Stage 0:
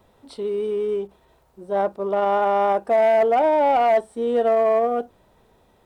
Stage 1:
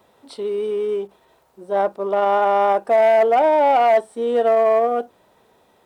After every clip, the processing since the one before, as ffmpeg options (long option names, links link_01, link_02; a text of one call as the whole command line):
ffmpeg -i in.wav -af "highpass=frequency=320:poles=1,volume=3.5dB" out.wav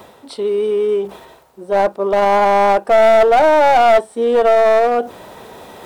ffmpeg -i in.wav -af "areverse,acompressor=mode=upward:threshold=-29dB:ratio=2.5,areverse,aeval=exprs='clip(val(0),-1,0.15)':channel_layout=same,volume=6dB" out.wav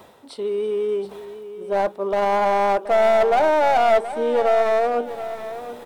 ffmpeg -i in.wav -af "aecho=1:1:726|1452|2178:0.237|0.0806|0.0274,volume=-6.5dB" out.wav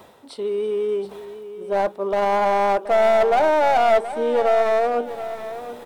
ffmpeg -i in.wav -af anull out.wav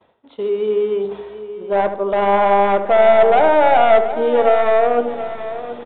ffmpeg -i in.wav -filter_complex "[0:a]asplit=2[link_01][link_02];[link_02]adelay=75,lowpass=frequency=1300:poles=1,volume=-7.5dB,asplit=2[link_03][link_04];[link_04]adelay=75,lowpass=frequency=1300:poles=1,volume=0.54,asplit=2[link_05][link_06];[link_06]adelay=75,lowpass=frequency=1300:poles=1,volume=0.54,asplit=2[link_07][link_08];[link_08]adelay=75,lowpass=frequency=1300:poles=1,volume=0.54,asplit=2[link_09][link_10];[link_10]adelay=75,lowpass=frequency=1300:poles=1,volume=0.54,asplit=2[link_11][link_12];[link_12]adelay=75,lowpass=frequency=1300:poles=1,volume=0.54,asplit=2[link_13][link_14];[link_14]adelay=75,lowpass=frequency=1300:poles=1,volume=0.54[link_15];[link_01][link_03][link_05][link_07][link_09][link_11][link_13][link_15]amix=inputs=8:normalize=0,aresample=8000,aresample=44100,agate=range=-33dB:threshold=-38dB:ratio=3:detection=peak,volume=4dB" out.wav